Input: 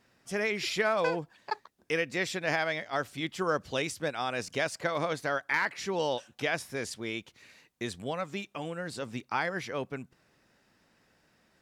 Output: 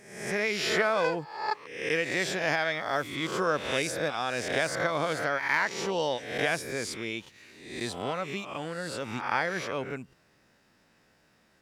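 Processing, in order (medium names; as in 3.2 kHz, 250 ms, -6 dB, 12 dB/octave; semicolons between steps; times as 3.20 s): reverse spectral sustain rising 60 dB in 0.75 s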